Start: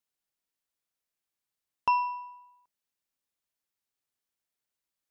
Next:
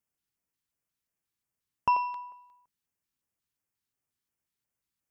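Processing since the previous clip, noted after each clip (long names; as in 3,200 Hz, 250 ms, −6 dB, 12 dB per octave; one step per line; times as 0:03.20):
parametric band 99 Hz +9 dB 2.8 octaves
auto-filter notch square 2.8 Hz 610–3,900 Hz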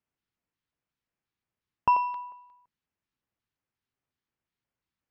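high-frequency loss of the air 190 metres
level +3.5 dB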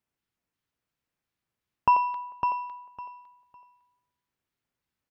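repeating echo 555 ms, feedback 20%, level −6.5 dB
level +2 dB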